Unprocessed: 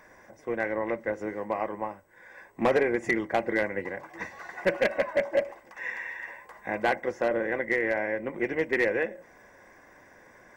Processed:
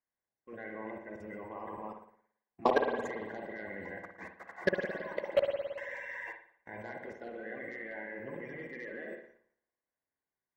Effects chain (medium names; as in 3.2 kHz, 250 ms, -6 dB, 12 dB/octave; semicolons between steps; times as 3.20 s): coarse spectral quantiser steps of 30 dB; treble shelf 4.7 kHz -2.5 dB; level held to a coarse grid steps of 22 dB; spring tank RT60 1.7 s, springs 55 ms, chirp 20 ms, DRR 2.5 dB; expander -41 dBFS